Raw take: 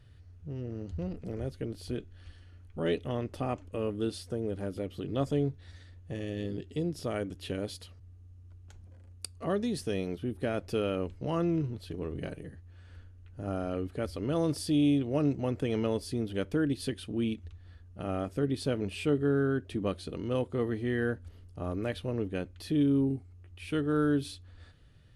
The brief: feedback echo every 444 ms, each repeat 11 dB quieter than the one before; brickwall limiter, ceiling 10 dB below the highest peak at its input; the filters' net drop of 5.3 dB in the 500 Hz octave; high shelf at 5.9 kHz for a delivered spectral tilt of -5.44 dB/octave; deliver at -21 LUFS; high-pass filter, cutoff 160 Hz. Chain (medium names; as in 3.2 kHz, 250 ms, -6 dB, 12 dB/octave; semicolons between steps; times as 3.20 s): high-pass 160 Hz; peaking EQ 500 Hz -6.5 dB; treble shelf 5.9 kHz +4.5 dB; peak limiter -24.5 dBFS; feedback delay 444 ms, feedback 28%, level -11 dB; trim +16 dB